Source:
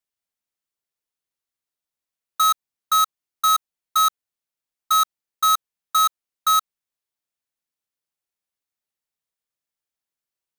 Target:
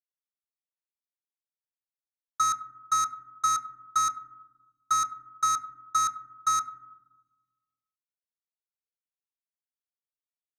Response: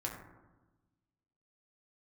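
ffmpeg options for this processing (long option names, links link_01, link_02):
-filter_complex "[0:a]firequalizer=gain_entry='entry(110,0);entry(310,13);entry(460,-28);entry(770,-21);entry(1300,1);entry(2100,3);entry(3200,-17);entry(5300,6);entry(15000,-23)':delay=0.05:min_phase=1,aeval=exprs='sgn(val(0))*max(abs(val(0))-0.00316,0)':channel_layout=same,asplit=2[link_01][link_02];[1:a]atrim=start_sample=2205,highshelf=frequency=9700:gain=-11[link_03];[link_02][link_03]afir=irnorm=-1:irlink=0,volume=-6dB[link_04];[link_01][link_04]amix=inputs=2:normalize=0,volume=-7.5dB"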